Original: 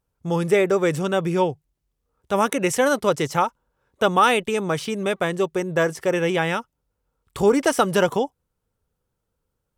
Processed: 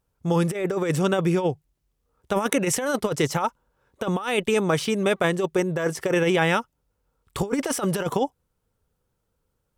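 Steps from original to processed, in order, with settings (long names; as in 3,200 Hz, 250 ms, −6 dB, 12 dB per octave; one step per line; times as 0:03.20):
compressor whose output falls as the input rises −21 dBFS, ratio −0.5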